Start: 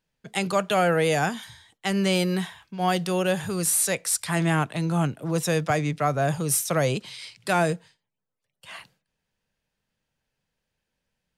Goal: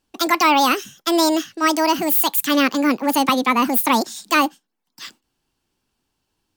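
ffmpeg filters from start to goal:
-af "asetrate=76440,aresample=44100,volume=6.5dB"

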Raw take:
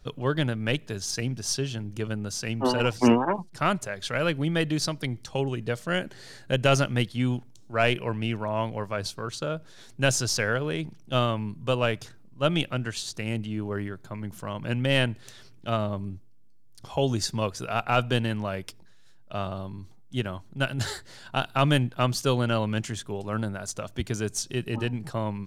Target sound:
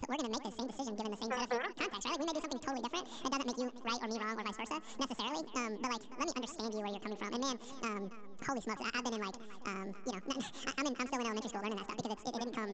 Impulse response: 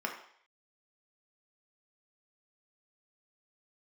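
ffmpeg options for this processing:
-filter_complex "[0:a]acompressor=threshold=-45dB:ratio=2.5,asplit=2[a][b];[b]adelay=558,lowpass=f=1.5k:p=1,volume=-15dB,asplit=2[c][d];[d]adelay=558,lowpass=f=1.5k:p=1,volume=0.54,asplit=2[e][f];[f]adelay=558,lowpass=f=1.5k:p=1,volume=0.54,asplit=2[g][h];[h]adelay=558,lowpass=f=1.5k:p=1,volume=0.54,asplit=2[i][j];[j]adelay=558,lowpass=f=1.5k:p=1,volume=0.54[k];[a][c][e][g][i][k]amix=inputs=6:normalize=0,asetrate=88200,aresample=44100,aresample=16000,aresample=44100,volume=3dB"

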